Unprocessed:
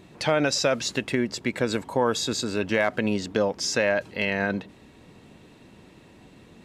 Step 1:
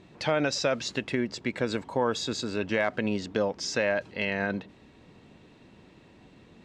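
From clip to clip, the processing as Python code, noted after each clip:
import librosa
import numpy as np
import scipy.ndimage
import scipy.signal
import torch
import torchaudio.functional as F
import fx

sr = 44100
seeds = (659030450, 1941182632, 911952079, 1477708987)

y = scipy.signal.sosfilt(scipy.signal.butter(2, 6200.0, 'lowpass', fs=sr, output='sos'), x)
y = F.gain(torch.from_numpy(y), -3.5).numpy()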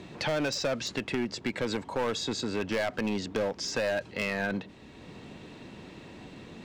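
y = np.clip(x, -10.0 ** (-24.5 / 20.0), 10.0 ** (-24.5 / 20.0))
y = fx.band_squash(y, sr, depth_pct=40)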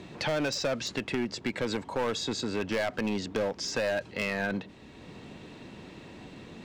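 y = x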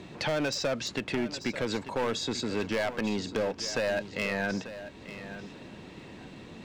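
y = fx.echo_feedback(x, sr, ms=891, feedback_pct=17, wet_db=-13)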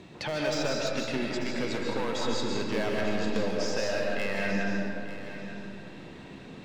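y = fx.rev_freeverb(x, sr, rt60_s=2.2, hf_ratio=0.55, predelay_ms=100, drr_db=-2.5)
y = F.gain(torch.from_numpy(y), -3.5).numpy()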